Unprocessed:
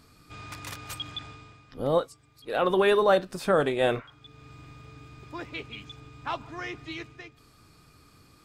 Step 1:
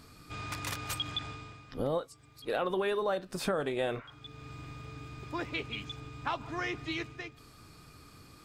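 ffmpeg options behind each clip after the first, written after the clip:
ffmpeg -i in.wav -af "acompressor=threshold=-32dB:ratio=5,volume=2.5dB" out.wav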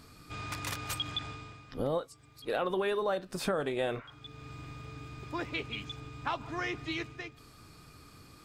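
ffmpeg -i in.wav -af anull out.wav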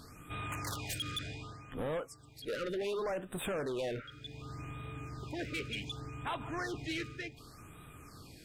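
ffmpeg -i in.wav -af "asoftclip=type=tanh:threshold=-34.5dB,afftfilt=real='re*(1-between(b*sr/1024,830*pow(5600/830,0.5+0.5*sin(2*PI*0.67*pts/sr))/1.41,830*pow(5600/830,0.5+0.5*sin(2*PI*0.67*pts/sr))*1.41))':imag='im*(1-between(b*sr/1024,830*pow(5600/830,0.5+0.5*sin(2*PI*0.67*pts/sr))/1.41,830*pow(5600/830,0.5+0.5*sin(2*PI*0.67*pts/sr))*1.41))':win_size=1024:overlap=0.75,volume=2dB" out.wav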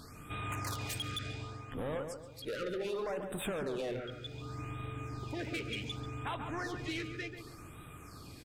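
ffmpeg -i in.wav -filter_complex "[0:a]acompressor=threshold=-38dB:ratio=3,asplit=2[link_01][link_02];[link_02]adelay=139,lowpass=frequency=1400:poles=1,volume=-5.5dB,asplit=2[link_03][link_04];[link_04]adelay=139,lowpass=frequency=1400:poles=1,volume=0.42,asplit=2[link_05][link_06];[link_06]adelay=139,lowpass=frequency=1400:poles=1,volume=0.42,asplit=2[link_07][link_08];[link_08]adelay=139,lowpass=frequency=1400:poles=1,volume=0.42,asplit=2[link_09][link_10];[link_10]adelay=139,lowpass=frequency=1400:poles=1,volume=0.42[link_11];[link_01][link_03][link_05][link_07][link_09][link_11]amix=inputs=6:normalize=0,volume=1.5dB" out.wav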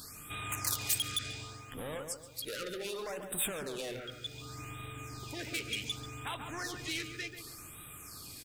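ffmpeg -i in.wav -af "crystalizer=i=5.5:c=0,volume=-4.5dB" out.wav

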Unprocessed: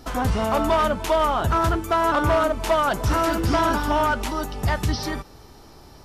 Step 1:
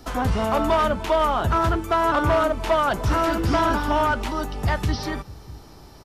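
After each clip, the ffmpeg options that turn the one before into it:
ffmpeg -i in.wav -filter_complex "[0:a]acrossover=split=250|660|4600[link_01][link_02][link_03][link_04];[link_01]aecho=1:1:638:0.15[link_05];[link_04]alimiter=level_in=9dB:limit=-24dB:level=0:latency=1:release=245,volume=-9dB[link_06];[link_05][link_02][link_03][link_06]amix=inputs=4:normalize=0" out.wav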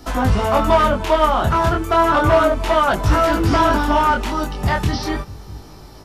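ffmpeg -i in.wav -af "flanger=delay=19:depth=7.3:speed=0.34,volume=8dB" out.wav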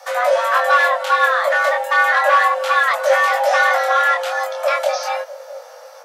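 ffmpeg -i in.wav -af "afreqshift=480" out.wav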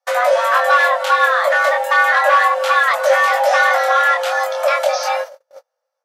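ffmpeg -i in.wav -filter_complex "[0:a]agate=range=-43dB:threshold=-29dB:ratio=16:detection=peak,asplit=2[link_01][link_02];[link_02]acompressor=threshold=-21dB:ratio=6,volume=0.5dB[link_03];[link_01][link_03]amix=inputs=2:normalize=0,volume=-1.5dB" out.wav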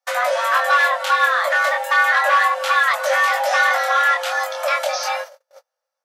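ffmpeg -i in.wav -af "highpass=frequency=1100:poles=1" out.wav

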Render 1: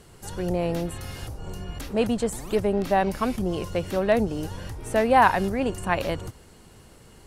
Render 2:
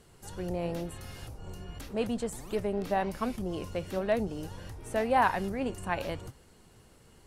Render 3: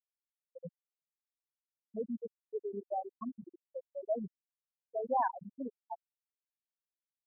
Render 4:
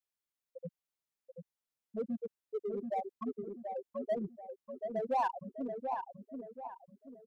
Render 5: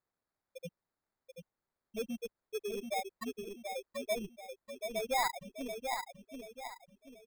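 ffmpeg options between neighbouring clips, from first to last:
ffmpeg -i in.wav -af "flanger=delay=3.9:depth=9.6:regen=83:speed=0.92:shape=triangular,volume=-3dB" out.wav
ffmpeg -i in.wav -af "afftfilt=real='re*gte(hypot(re,im),0.224)':imag='im*gte(hypot(re,im),0.224)':win_size=1024:overlap=0.75,volume=-5dB" out.wav
ffmpeg -i in.wav -filter_complex "[0:a]asplit=2[link_01][link_02];[link_02]volume=35.5dB,asoftclip=hard,volume=-35.5dB,volume=-4dB[link_03];[link_01][link_03]amix=inputs=2:normalize=0,asplit=2[link_04][link_05];[link_05]adelay=733,lowpass=frequency=1400:poles=1,volume=-5dB,asplit=2[link_06][link_07];[link_07]adelay=733,lowpass=frequency=1400:poles=1,volume=0.4,asplit=2[link_08][link_09];[link_09]adelay=733,lowpass=frequency=1400:poles=1,volume=0.4,asplit=2[link_10][link_11];[link_11]adelay=733,lowpass=frequency=1400:poles=1,volume=0.4,asplit=2[link_12][link_13];[link_13]adelay=733,lowpass=frequency=1400:poles=1,volume=0.4[link_14];[link_04][link_06][link_08][link_10][link_12][link_14]amix=inputs=6:normalize=0,volume=-2.5dB" out.wav
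ffmpeg -i in.wav -af "asubboost=boost=9.5:cutoff=58,acrusher=samples=15:mix=1:aa=0.000001" out.wav

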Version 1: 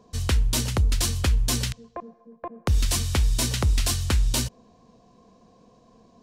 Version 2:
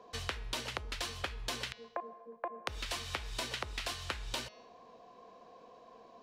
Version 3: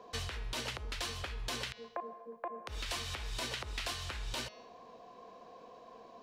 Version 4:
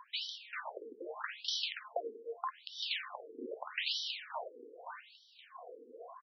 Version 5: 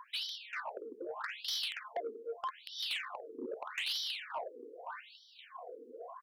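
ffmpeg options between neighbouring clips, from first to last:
ffmpeg -i in.wav -filter_complex "[0:a]acrossover=split=400 3900:gain=0.1 1 0.158[link_01][link_02][link_03];[link_01][link_02][link_03]amix=inputs=3:normalize=0,bandreject=frequency=210.9:width_type=h:width=4,bandreject=frequency=421.8:width_type=h:width=4,bandreject=frequency=632.7:width_type=h:width=4,bandreject=frequency=843.6:width_type=h:width=4,bandreject=frequency=1054.5:width_type=h:width=4,bandreject=frequency=1265.4:width_type=h:width=4,bandreject=frequency=1476.3:width_type=h:width=4,bandreject=frequency=1687.2:width_type=h:width=4,bandreject=frequency=1898.1:width_type=h:width=4,bandreject=frequency=2109:width_type=h:width=4,bandreject=frequency=2319.9:width_type=h:width=4,bandreject=frequency=2530.8:width_type=h:width=4,bandreject=frequency=2741.7:width_type=h:width=4,bandreject=frequency=2952.6:width_type=h:width=4,bandreject=frequency=3163.5:width_type=h:width=4,bandreject=frequency=3374.4:width_type=h:width=4,bandreject=frequency=3585.3:width_type=h:width=4,bandreject=frequency=3796.2:width_type=h:width=4,bandreject=frequency=4007.1:width_type=h:width=4,bandreject=frequency=4218:width_type=h:width=4,bandreject=frequency=4428.9:width_type=h:width=4,bandreject=frequency=4639.8:width_type=h:width=4,bandreject=frequency=4850.7:width_type=h:width=4,bandreject=frequency=5061.6:width_type=h:width=4,bandreject=frequency=5272.5:width_type=h:width=4,bandreject=frequency=5483.4:width_type=h:width=4,bandreject=frequency=5694.3:width_type=h:width=4,bandreject=frequency=5905.2:width_type=h:width=4,bandreject=frequency=6116.1:width_type=h:width=4,acompressor=threshold=-40dB:ratio=6,volume=4.5dB" out.wav
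ffmpeg -i in.wav -af "alimiter=level_in=5dB:limit=-24dB:level=0:latency=1:release=58,volume=-5dB,volume=2.5dB" out.wav
ffmpeg -i in.wav -filter_complex "[0:a]asplit=2[link_01][link_02];[link_02]aecho=0:1:525|1050|1575:0.501|0.0852|0.0145[link_03];[link_01][link_03]amix=inputs=2:normalize=0,afftfilt=real='re*between(b*sr/1024,340*pow(4300/340,0.5+0.5*sin(2*PI*0.81*pts/sr))/1.41,340*pow(4300/340,0.5+0.5*sin(2*PI*0.81*pts/sr))*1.41)':imag='im*between(b*sr/1024,340*pow(4300/340,0.5+0.5*sin(2*PI*0.81*pts/sr))/1.41,340*pow(4300/340,0.5+0.5*sin(2*PI*0.81*pts/sr))*1.41)':win_size=1024:overlap=0.75,volume=6dB" out.wav
ffmpeg -i in.wav -af "asoftclip=type=tanh:threshold=-33.5dB,volume=3dB" out.wav

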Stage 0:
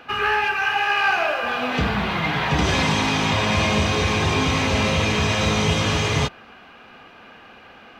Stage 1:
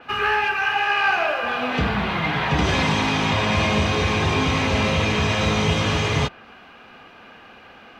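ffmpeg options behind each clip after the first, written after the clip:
ffmpeg -i in.wav -af "adynamicequalizer=threshold=0.01:dfrequency=4500:dqfactor=0.7:tfrequency=4500:tqfactor=0.7:attack=5:release=100:ratio=0.375:range=2.5:mode=cutabove:tftype=highshelf" out.wav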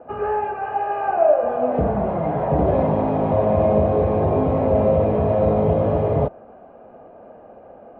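ffmpeg -i in.wav -af "lowpass=frequency=610:width_type=q:width=4.2" out.wav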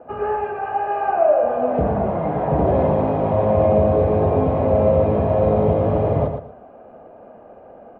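ffmpeg -i in.wav -af "aecho=1:1:115|230|345:0.422|0.0928|0.0204" out.wav

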